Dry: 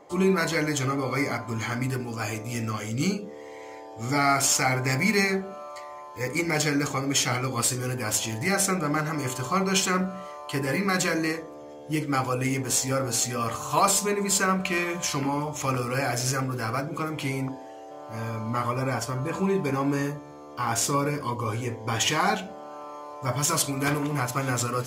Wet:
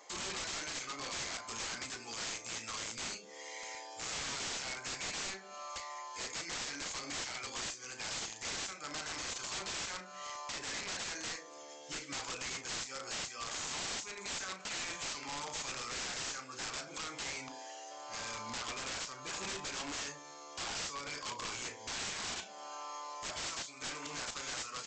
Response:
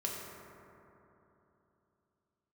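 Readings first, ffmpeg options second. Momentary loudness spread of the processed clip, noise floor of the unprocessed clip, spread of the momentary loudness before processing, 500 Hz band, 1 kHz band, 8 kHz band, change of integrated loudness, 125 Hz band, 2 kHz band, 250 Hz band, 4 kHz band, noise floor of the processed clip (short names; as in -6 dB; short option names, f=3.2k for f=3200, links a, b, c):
6 LU, -42 dBFS, 13 LU, -19.5 dB, -15.5 dB, -11.0 dB, -13.5 dB, -27.0 dB, -12.5 dB, -23.5 dB, -6.5 dB, -52 dBFS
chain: -filter_complex "[0:a]aderivative,acompressor=threshold=-49dB:ratio=2.5,aresample=16000,aeval=exprs='(mod(211*val(0)+1,2)-1)/211':c=same,aresample=44100,asplit=2[a][b];[b]adelay=35,volume=-12dB[c];[a][c]amix=inputs=2:normalize=0,volume=12dB"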